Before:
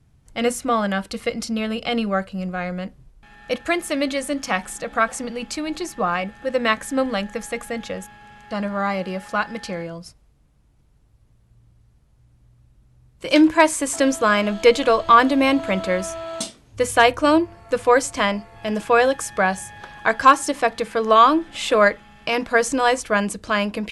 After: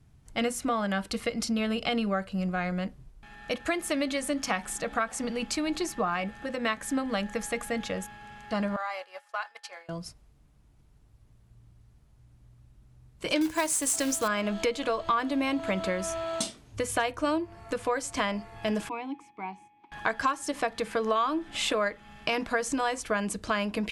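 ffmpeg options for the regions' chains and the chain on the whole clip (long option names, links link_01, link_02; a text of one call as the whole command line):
ffmpeg -i in.wav -filter_complex "[0:a]asettb=1/sr,asplit=3[link_01][link_02][link_03];[link_01]atrim=end=8.764[link_04];[link_02]atrim=start=8.76:end=9.89,asetpts=PTS-STARTPTS,afade=type=in:duration=0.004:curve=qsin,afade=type=out:start_time=1.126:duration=0.004:curve=qsin,highpass=frequency=630:width=0.5412,highpass=frequency=630:width=1.3066,agate=range=-33dB:threshold=-29dB:ratio=3:release=100:detection=peak,acompressor=threshold=-33dB:ratio=2:attack=3.2:release=140:knee=1:detection=peak[link_05];[link_03]atrim=start=9.886[link_06];[link_04][link_05]acrossfade=duration=0.004:curve1=hsin:curve2=qsin[link_07];[link_07][link_06]acrossfade=duration=0.004:curve1=qsin:curve2=hsin,asettb=1/sr,asplit=3[link_08][link_09][link_10];[link_08]atrim=end=13.414[link_11];[link_09]atrim=start=13.41:end=14.28,asetpts=PTS-STARTPTS,afade=type=in:duration=0.004:curve=qsin,afade=type=out:start_time=0.866:duration=0.004:curve=qsin,bass=frequency=250:gain=2,treble=frequency=4000:gain=11,acrusher=bits=3:mode=log:mix=0:aa=0.000001[link_12];[link_10]atrim=start=14.276[link_13];[link_11][link_12]acrossfade=duration=0.004:curve1=hsin:curve2=qsin[link_14];[link_14][link_13]acrossfade=duration=0.004:curve1=qsin:curve2=hsin,asettb=1/sr,asplit=3[link_15][link_16][link_17];[link_15]atrim=end=18.894[link_18];[link_16]atrim=start=18.89:end=19.92,asetpts=PTS-STARTPTS,afade=type=in:duration=0.004:curve=qsin,afade=type=out:start_time=1.026:duration=0.004:curve=qsin,agate=range=-8dB:threshold=-37dB:ratio=16:release=100:detection=peak,asplit=3[link_19][link_20][link_21];[link_19]bandpass=frequency=300:width_type=q:width=8,volume=0dB[link_22];[link_20]bandpass=frequency=870:width_type=q:width=8,volume=-6dB[link_23];[link_21]bandpass=frequency=2240:width_type=q:width=8,volume=-9dB[link_24];[link_22][link_23][link_24]amix=inputs=3:normalize=0[link_25];[link_17]atrim=start=19.916[link_26];[link_18][link_25]acrossfade=duration=0.004:curve1=hsin:curve2=qsin[link_27];[link_27][link_26]acrossfade=duration=0.004:curve1=qsin:curve2=hsin,acompressor=threshold=-23dB:ratio=6,bandreject=frequency=520:width=12,volume=-1.5dB" out.wav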